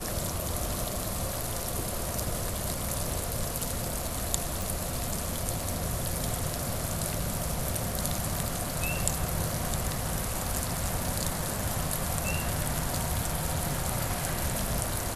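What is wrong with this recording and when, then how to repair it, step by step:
4.62 pop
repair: de-click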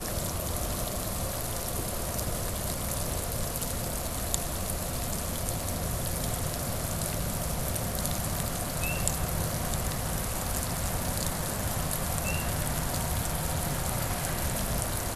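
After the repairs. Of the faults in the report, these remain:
none

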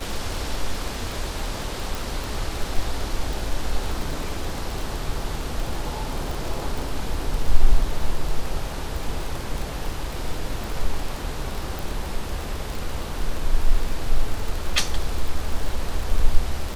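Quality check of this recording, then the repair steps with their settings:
crackle 26/s -24 dBFS
1.95 pop
11.79 pop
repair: de-click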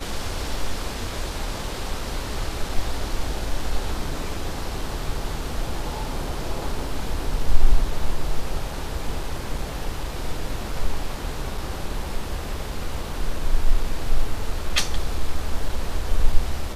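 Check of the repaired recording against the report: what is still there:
none

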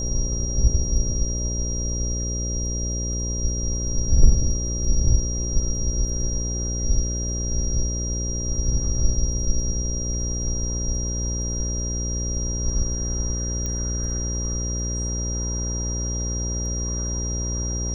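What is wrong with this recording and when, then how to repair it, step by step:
buzz 60 Hz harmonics 10 -27 dBFS
tone 5700 Hz -29 dBFS
13.66 pop -15 dBFS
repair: de-click; notch 5700 Hz, Q 30; de-hum 60 Hz, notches 10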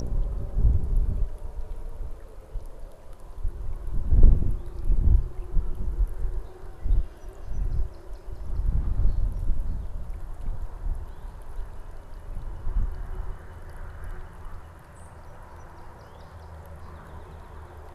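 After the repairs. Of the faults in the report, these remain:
none

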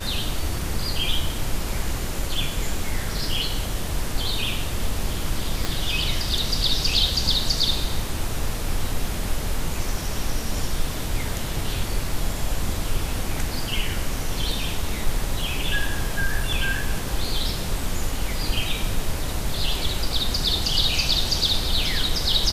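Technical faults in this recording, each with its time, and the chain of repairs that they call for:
5.65 pop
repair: de-click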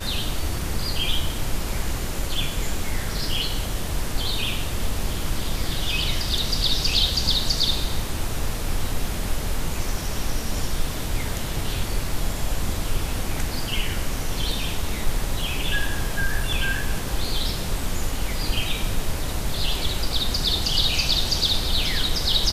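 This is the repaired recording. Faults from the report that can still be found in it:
5.65 pop

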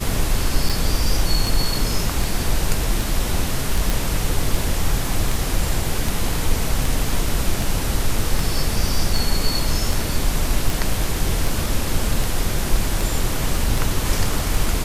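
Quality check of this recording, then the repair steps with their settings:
tick 78 rpm
0.69–0.7 gap 5.6 ms
3.9 pop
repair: de-click; interpolate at 0.69, 5.6 ms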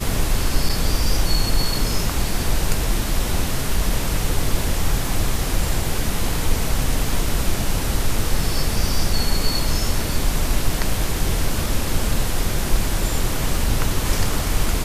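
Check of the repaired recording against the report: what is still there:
none

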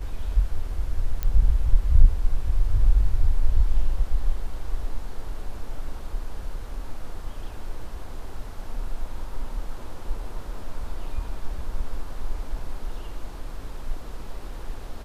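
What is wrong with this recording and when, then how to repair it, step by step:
1.23 pop -14 dBFS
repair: de-click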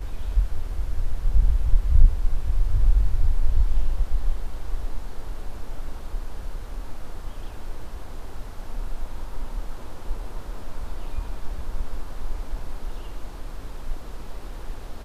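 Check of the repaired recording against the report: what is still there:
none

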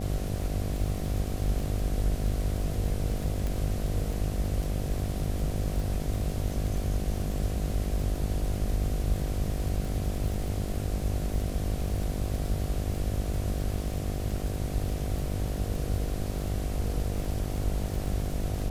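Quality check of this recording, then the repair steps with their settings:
buzz 50 Hz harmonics 15 -34 dBFS
crackle 38/s -33 dBFS
3.47 pop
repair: de-click; de-hum 50 Hz, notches 15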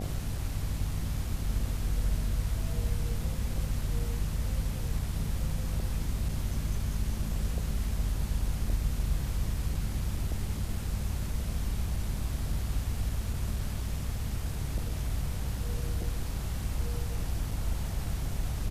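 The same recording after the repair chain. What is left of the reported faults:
none

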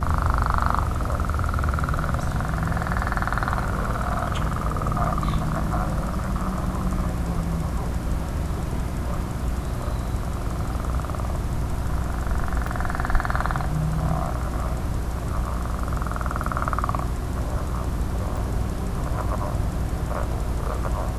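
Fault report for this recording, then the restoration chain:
hum 60 Hz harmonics 6 -29 dBFS
12.67 gap 3.1 ms
18.37 gap 3.2 ms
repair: de-hum 60 Hz, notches 6; interpolate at 12.67, 3.1 ms; interpolate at 18.37, 3.2 ms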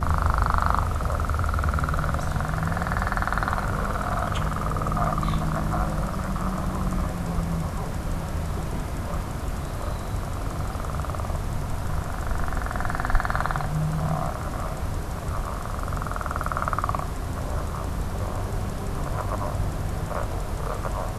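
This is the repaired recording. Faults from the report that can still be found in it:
none

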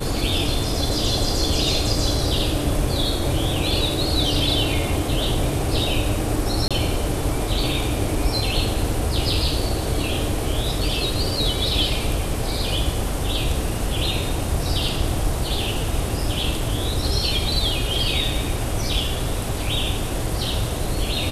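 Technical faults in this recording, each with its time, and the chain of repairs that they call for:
6.68–6.71 gap 26 ms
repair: interpolate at 6.68, 26 ms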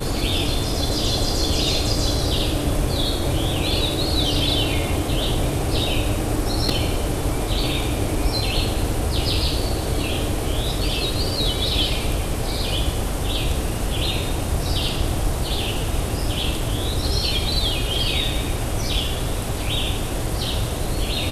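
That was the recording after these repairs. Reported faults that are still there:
none

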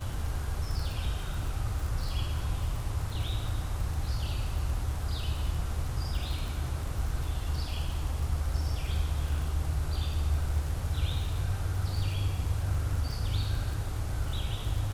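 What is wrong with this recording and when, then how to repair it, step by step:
crackle 38/s -35 dBFS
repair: de-click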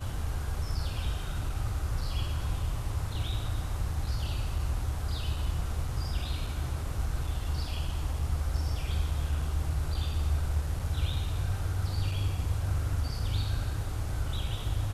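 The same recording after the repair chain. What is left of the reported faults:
none

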